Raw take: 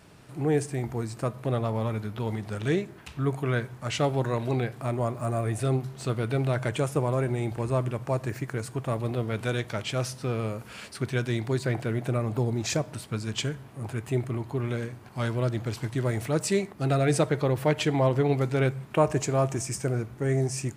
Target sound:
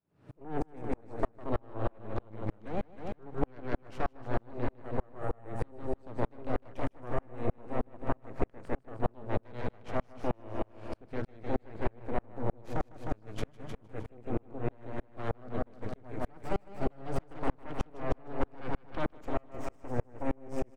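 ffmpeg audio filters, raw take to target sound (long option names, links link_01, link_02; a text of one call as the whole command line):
ffmpeg -i in.wav -filter_complex "[0:a]highpass=frequency=210:poles=1,lowshelf=frequency=350:gain=7.5,aeval=exprs='0.501*(cos(1*acos(clip(val(0)/0.501,-1,1)))-cos(1*PI/2))+0.251*(cos(8*acos(clip(val(0)/0.501,-1,1)))-cos(8*PI/2))':channel_layout=same,alimiter=limit=-9.5dB:level=0:latency=1:release=138,asplit=2[link_01][link_02];[link_02]aecho=0:1:154|308|462|616|770|924|1078|1232:0.596|0.351|0.207|0.122|0.0722|0.0426|0.0251|0.0148[link_03];[link_01][link_03]amix=inputs=2:normalize=0,acompressor=threshold=-21dB:ratio=2.5,lowpass=frequency=1100:poles=1,aeval=exprs='val(0)*pow(10,-38*if(lt(mod(-3.2*n/s,1),2*abs(-3.2)/1000),1-mod(-3.2*n/s,1)/(2*abs(-3.2)/1000),(mod(-3.2*n/s,1)-2*abs(-3.2)/1000)/(1-2*abs(-3.2)/1000))/20)':channel_layout=same" out.wav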